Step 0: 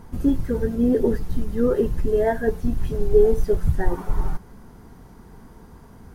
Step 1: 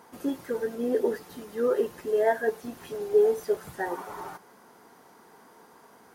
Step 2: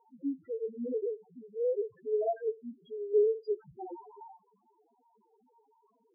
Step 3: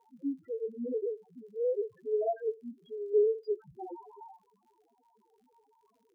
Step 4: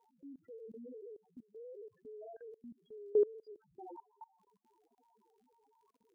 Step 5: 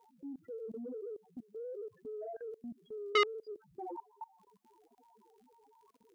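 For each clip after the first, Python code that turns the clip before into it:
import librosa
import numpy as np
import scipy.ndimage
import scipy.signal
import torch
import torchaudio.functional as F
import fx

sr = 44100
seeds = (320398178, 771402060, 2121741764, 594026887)

y1 = scipy.signal.sosfilt(scipy.signal.butter(2, 480.0, 'highpass', fs=sr, output='sos'), x)
y2 = fx.spec_topn(y1, sr, count=1)
y3 = fx.dmg_crackle(y2, sr, seeds[0], per_s=77.0, level_db=-63.0)
y4 = fx.level_steps(y3, sr, step_db=24)
y4 = y4 * librosa.db_to_amplitude(-1.0)
y5 = fx.transformer_sat(y4, sr, knee_hz=1800.0)
y5 = y5 * librosa.db_to_amplitude(7.0)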